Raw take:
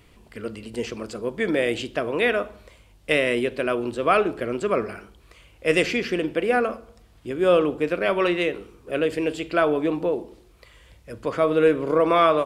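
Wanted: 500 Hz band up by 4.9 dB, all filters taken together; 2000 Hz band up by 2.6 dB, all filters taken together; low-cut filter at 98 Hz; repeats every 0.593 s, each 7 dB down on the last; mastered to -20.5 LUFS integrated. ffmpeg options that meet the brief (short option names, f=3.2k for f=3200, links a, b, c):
-af "highpass=98,equalizer=f=500:t=o:g=5.5,equalizer=f=2k:t=o:g=3,aecho=1:1:593|1186|1779|2372|2965:0.447|0.201|0.0905|0.0407|0.0183,volume=-1dB"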